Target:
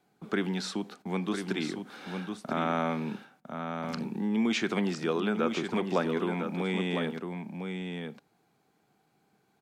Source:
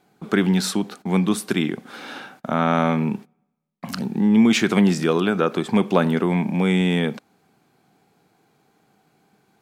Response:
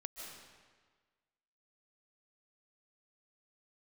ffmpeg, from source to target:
-filter_complex "[0:a]acrossover=split=7400[link_01][link_02];[link_02]acompressor=threshold=-56dB:ratio=4:attack=1:release=60[link_03];[link_01][link_03]amix=inputs=2:normalize=0,aecho=1:1:1004:0.447,acrossover=split=220[link_04][link_05];[link_04]acompressor=threshold=-31dB:ratio=6[link_06];[link_06][link_05]amix=inputs=2:normalize=0,volume=-9dB"

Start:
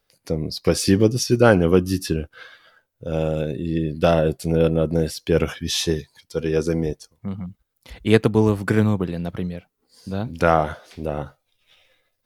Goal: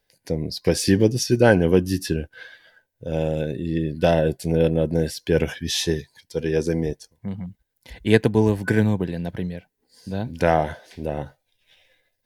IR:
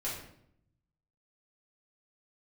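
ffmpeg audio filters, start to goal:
-af "superequalizer=10b=0.316:11b=1.41,volume=-1dB"

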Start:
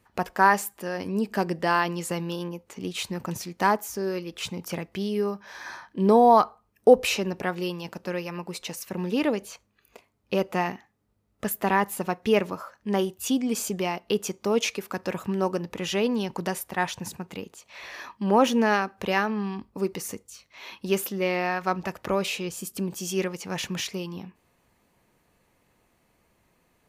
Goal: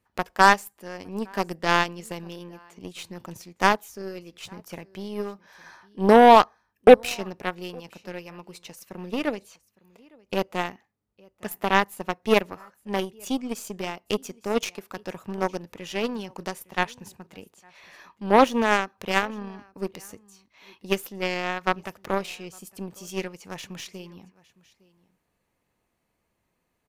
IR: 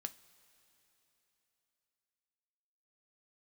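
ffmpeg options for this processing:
-af "aecho=1:1:860:0.1,aeval=exprs='0.596*(cos(1*acos(clip(val(0)/0.596,-1,1)))-cos(1*PI/2))+0.0133*(cos(6*acos(clip(val(0)/0.596,-1,1)))-cos(6*PI/2))+0.0668*(cos(7*acos(clip(val(0)/0.596,-1,1)))-cos(7*PI/2))':channel_layout=same,volume=4dB"

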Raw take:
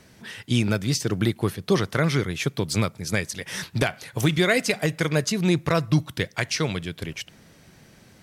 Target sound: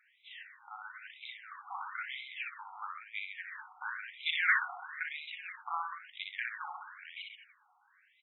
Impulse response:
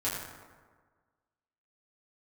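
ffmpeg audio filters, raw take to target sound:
-filter_complex "[0:a]asettb=1/sr,asplit=3[link_01][link_02][link_03];[link_01]atrim=end=0.804[link_04];[link_02]atrim=start=0.8:end=2.31,asetpts=PTS-STARTPTS,afade=type=in:duration=0.004:curve=qsin,afade=type=out:start_time=1.506:duration=0.004:curve=qsin,aeval=exprs='0.447*(cos(1*acos(clip(val(0)/0.447,-1,1)))-cos(1*PI/2))+0.0708*(cos(3*acos(clip(val(0)/0.447,-1,1)))-cos(3*PI/2))+0.0631*(cos(4*acos(clip(val(0)/0.447,-1,1)))-cos(4*PI/2))+0.0398*(cos(5*acos(clip(val(0)/0.447,-1,1)))-cos(5*PI/2))':channel_layout=same[link_05];[link_03]atrim=start=2.306[link_06];[link_04][link_05]acrossfade=duration=0.004:curve1=hsin:curve2=qsin[link_07];[link_07][link_06]acrossfade=duration=0.004:curve1=qsin:curve2=hsin,aecho=1:1:60|132|218.4|322.1|446.5:0.631|0.398|0.251|0.158|0.1,asplit=3[link_08][link_09][link_10];[link_08]afade=type=out:start_time=4.2:duration=0.02[link_11];[link_09]acontrast=77,afade=type=in:start_time=4.2:duration=0.02,afade=type=out:start_time=4.65:duration=0.02[link_12];[link_10]afade=type=in:start_time=4.65:duration=0.02[link_13];[link_11][link_12][link_13]amix=inputs=3:normalize=0,asplit=2[link_14][link_15];[link_15]equalizer=frequency=820:width=2.3:gain=7[link_16];[1:a]atrim=start_sample=2205,lowpass=2400[link_17];[link_16][link_17]afir=irnorm=-1:irlink=0,volume=-14dB[link_18];[link_14][link_18]amix=inputs=2:normalize=0,afftfilt=real='re*between(b*sr/1024,990*pow(2900/990,0.5+0.5*sin(2*PI*1*pts/sr))/1.41,990*pow(2900/990,0.5+0.5*sin(2*PI*1*pts/sr))*1.41)':imag='im*between(b*sr/1024,990*pow(2900/990,0.5+0.5*sin(2*PI*1*pts/sr))/1.41,990*pow(2900/990,0.5+0.5*sin(2*PI*1*pts/sr))*1.41)':win_size=1024:overlap=0.75,volume=-9dB"

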